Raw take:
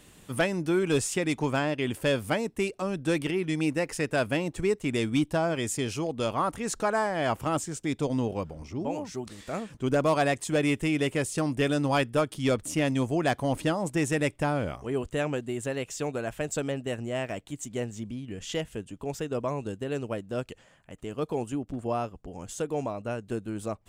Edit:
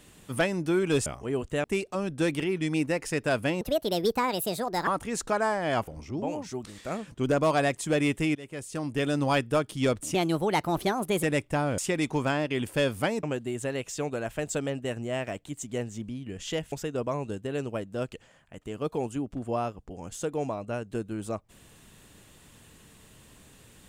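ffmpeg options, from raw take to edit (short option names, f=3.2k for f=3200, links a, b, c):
-filter_complex "[0:a]asplit=12[a][b][c][d][e][f][g][h][i][j][k][l];[a]atrim=end=1.062[m];[b]atrim=start=14.668:end=15.252[n];[c]atrim=start=2.508:end=4.484[o];[d]atrim=start=4.48:end=6.4,asetpts=PTS-STARTPTS,asetrate=67032,aresample=44100,atrim=end_sample=55705,asetpts=PTS-STARTPTS[p];[e]atrim=start=6.396:end=7.402[q];[f]atrim=start=8.498:end=10.98,asetpts=PTS-STARTPTS,afade=t=out:st=2.478:d=0.004:c=hsin:silence=0.0891251[r];[g]atrim=start=10.98:end=12.774,asetpts=PTS-STARTPTS,afade=t=in:d=0.86:silence=0.0891251[s];[h]atrim=start=12.77:end=14.12,asetpts=PTS-STARTPTS,asetrate=54684,aresample=44100,atrim=end_sample=48012,asetpts=PTS-STARTPTS[t];[i]atrim=start=14.116:end=14.672[u];[j]atrim=start=1.058:end=2.512[v];[k]atrim=start=15.248:end=18.742[w];[l]atrim=start=19.088[x];[m][n]acrossfade=d=0.004:c1=hsin:c2=hsin[y];[y][o]acrossfade=d=0.004:c1=hsin:c2=hsin[z];[z][p]acrossfade=d=0.004:c1=hsin:c2=hsin[aa];[aa][q]acrossfade=d=0.004:c1=hsin:c2=hsin[ab];[r][s]concat=n=2:v=0:a=1[ac];[ab][ac]acrossfade=d=0.004:c1=hsin:c2=hsin[ad];[ad][t]acrossfade=d=0.004:c1=hsin:c2=hsin[ae];[ae][u]acrossfade=d=0.004:c1=hsin:c2=hsin[af];[af][v]acrossfade=d=0.004:c1=hsin:c2=hsin[ag];[ag][w]acrossfade=d=0.004:c1=hsin:c2=hsin[ah];[ah][x]acrossfade=d=0.004:c1=hsin:c2=hsin"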